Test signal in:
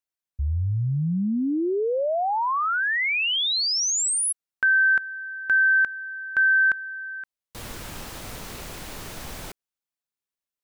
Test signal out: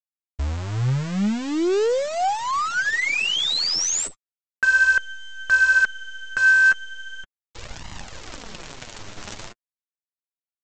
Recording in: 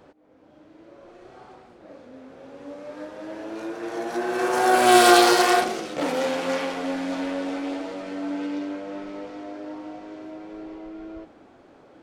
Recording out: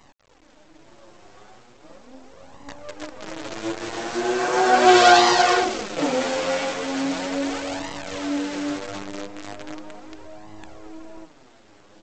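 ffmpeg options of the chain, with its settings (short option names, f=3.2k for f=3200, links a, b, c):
-af "aresample=16000,acrusher=bits=6:dc=4:mix=0:aa=0.000001,aresample=44100,flanger=delay=1:depth=8.8:regen=17:speed=0.38:shape=sinusoidal,volume=5dB"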